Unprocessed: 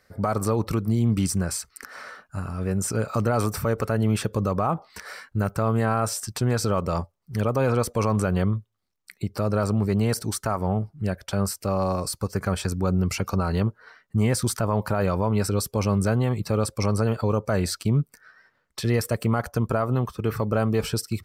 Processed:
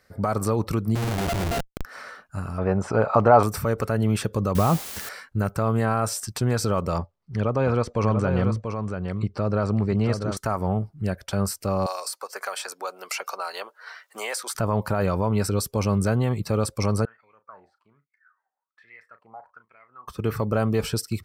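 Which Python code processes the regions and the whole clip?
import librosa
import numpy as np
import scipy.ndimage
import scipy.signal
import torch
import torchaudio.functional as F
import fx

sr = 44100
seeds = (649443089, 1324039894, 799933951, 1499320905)

y = fx.chain(x, sr, fx.sample_sort(block=64),
    fx.lowpass(hz=1100.0, slope=24),
    fx.schmitt(flips_db=-32.0), at=(0.95, 1.85))
y = fx.chain(y, sr, fx.lowpass(hz=3300.0, slope=12),
    fx.peak_eq(hz=800.0, db=14.5, octaves=1.4), at=(2.58, 3.43))
y = fx.chain(y, sr, fx.low_shelf(hz=320.0, db=9.0),
    fx.quant_dither(seeds[0], bits=6, dither='triangular'), at=(4.55, 5.09))
y = fx.chain(y, sr, fx.air_absorb(metres=120.0),
    fx.echo_single(ms=687, db=-6.5), at=(6.98, 10.37))
y = fx.chain(y, sr, fx.highpass(hz=590.0, slope=24),
    fx.band_squash(depth_pct=70), at=(11.86, 14.55))
y = fx.chain(y, sr, fx.high_shelf(hz=3400.0, db=-9.0),
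    fx.wah_lfo(hz=1.2, low_hz=760.0, high_hz=2200.0, q=17.0),
    fx.doubler(ms=36.0, db=-12.0), at=(17.05, 20.08))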